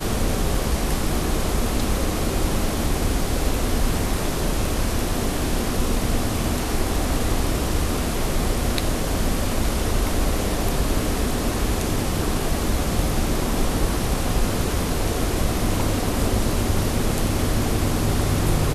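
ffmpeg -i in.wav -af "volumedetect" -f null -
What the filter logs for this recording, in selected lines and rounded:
mean_volume: -21.0 dB
max_volume: -5.1 dB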